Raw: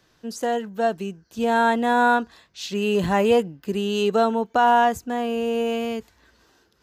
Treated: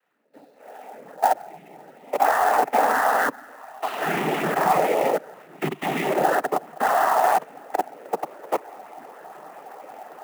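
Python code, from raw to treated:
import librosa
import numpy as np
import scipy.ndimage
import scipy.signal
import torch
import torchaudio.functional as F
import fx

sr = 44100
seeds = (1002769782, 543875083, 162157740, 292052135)

p1 = fx.spec_swells(x, sr, rise_s=0.34)
p2 = fx.doppler_pass(p1, sr, speed_mps=6, closest_m=8.3, pass_at_s=2.98)
p3 = fx.tilt_eq(p2, sr, slope=4.5)
p4 = p3 + fx.echo_diffused(p3, sr, ms=907, feedback_pct=58, wet_db=-10.5, dry=0)
p5 = fx.stretch_vocoder(p4, sr, factor=1.5)
p6 = fx.room_shoebox(p5, sr, seeds[0], volume_m3=350.0, walls='mixed', distance_m=1.8)
p7 = fx.level_steps(p6, sr, step_db=22)
p8 = fx.noise_vocoder(p7, sr, seeds[1], bands=12)
p9 = fx.cabinet(p8, sr, low_hz=150.0, low_slope=12, high_hz=2200.0, hz=(200.0, 380.0, 750.0), db=(-3, 4, 9))
y = fx.clock_jitter(p9, sr, seeds[2], jitter_ms=0.021)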